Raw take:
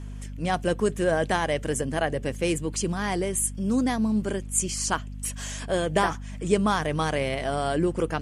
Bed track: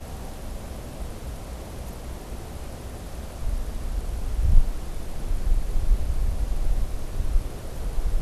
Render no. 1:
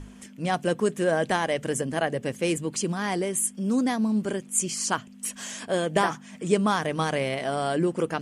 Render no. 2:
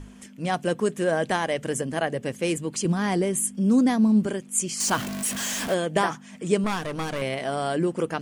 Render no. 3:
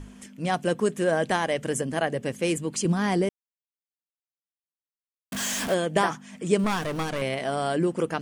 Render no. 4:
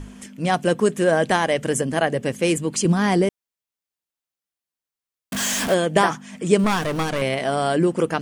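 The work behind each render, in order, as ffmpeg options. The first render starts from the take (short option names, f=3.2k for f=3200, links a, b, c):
-af "bandreject=f=50:t=h:w=6,bandreject=f=100:t=h:w=6,bandreject=f=150:t=h:w=6"
-filter_complex "[0:a]asettb=1/sr,asplit=3[a][b][c];[a]atrim=end=2.854[d];[b]atrim=start=2.85:end=4.27,asetpts=PTS-STARTPTS,afade=t=in:d=0.004:c=qsin,afade=t=out:st=1.416:d=0.004:c=qsin,lowshelf=f=330:g=8[e];[c]atrim=start=4.266[f];[d][e]acrossfade=d=0.004:c1=hsin:c2=qsin[g];[g][f]acrossfade=d=0.004:c1=qsin:c2=hsin,asettb=1/sr,asplit=3[h][i][j];[h]atrim=end=4.804[k];[i]atrim=start=4.8:end=5.74,asetpts=PTS-STARTPTS,afade=t=in:d=0.004:c=qsin,afade=t=out:st=0.936:d=0.004:c=qsin,aeval=exprs='val(0)+0.5*0.0473*sgn(val(0))':c=same[l];[j]atrim=start=5.736[m];[k][l]acrossfade=d=0.004:c1=hsin:c2=qsin[n];[n][m]acrossfade=d=0.004:c1=qsin:c2=hsin,asettb=1/sr,asplit=3[o][p][q];[o]atrim=end=6.644[r];[p]atrim=start=6.64:end=7.22,asetpts=PTS-STARTPTS,afade=t=in:d=0.004:c=qsin,afade=t=out:st=0.576:d=0.004:c=qsin,aeval=exprs='clip(val(0),-1,0.0282)':c=same[s];[q]atrim=start=7.216[t];[r][s]acrossfade=d=0.004:c1=hsin:c2=qsin[u];[u][t]acrossfade=d=0.004:c1=qsin:c2=hsin"
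-filter_complex "[0:a]asettb=1/sr,asplit=3[a][b][c];[a]atrim=end=6.594[d];[b]atrim=start=6.59:end=7.03,asetpts=PTS-STARTPTS,afade=t=in:d=0.004:c=qsin,afade=t=out:st=0.436:d=0.004:c=qsin,aeval=exprs='val(0)+0.5*0.0126*sgn(val(0))':c=same[e];[c]atrim=start=7.026[f];[d][e]acrossfade=d=0.004:c1=hsin:c2=qsin[g];[g][f]acrossfade=d=0.004:c1=qsin:c2=hsin,asplit=3[h][i][j];[h]atrim=end=3.29,asetpts=PTS-STARTPTS,afade=t=out:st=3.286:d=0.004:c=hsin[k];[i]atrim=start=3.29:end=5.32,asetpts=PTS-STARTPTS,volume=0[l];[j]atrim=start=5.32,asetpts=PTS-STARTPTS,afade=t=in:d=0.004:c=hsin[m];[k][l][m]concat=n=3:v=0:a=1"
-af "volume=5.5dB"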